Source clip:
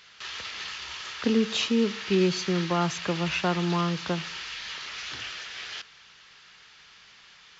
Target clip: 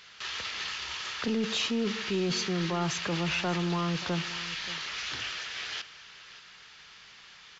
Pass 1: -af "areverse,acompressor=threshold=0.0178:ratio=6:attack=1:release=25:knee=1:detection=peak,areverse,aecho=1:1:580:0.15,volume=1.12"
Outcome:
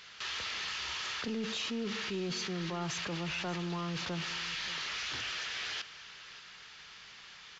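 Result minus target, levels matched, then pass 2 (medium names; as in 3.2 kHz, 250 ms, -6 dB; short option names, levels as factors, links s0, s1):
compression: peak gain reduction +7 dB
-af "areverse,acompressor=threshold=0.0473:ratio=6:attack=1:release=25:knee=1:detection=peak,areverse,aecho=1:1:580:0.15,volume=1.12"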